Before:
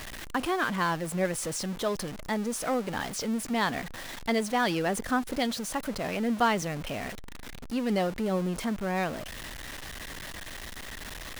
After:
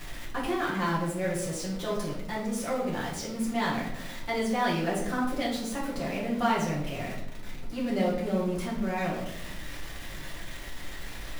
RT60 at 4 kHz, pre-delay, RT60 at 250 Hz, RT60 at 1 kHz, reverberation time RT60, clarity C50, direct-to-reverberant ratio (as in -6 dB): 0.55 s, 5 ms, 1.3 s, 0.75 s, 0.85 s, 4.5 dB, -6.5 dB